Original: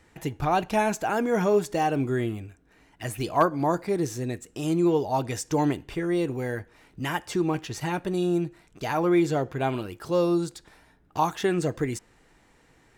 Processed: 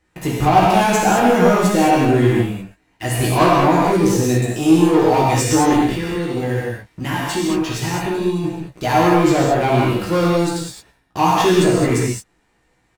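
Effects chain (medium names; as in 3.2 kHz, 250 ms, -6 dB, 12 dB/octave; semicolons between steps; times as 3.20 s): waveshaping leveller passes 3; 5.84–8.44 s: compression, threshold -21 dBFS, peak gain reduction 8 dB; doubling 16 ms -4 dB; gated-style reverb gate 240 ms flat, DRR -4.5 dB; trim -4 dB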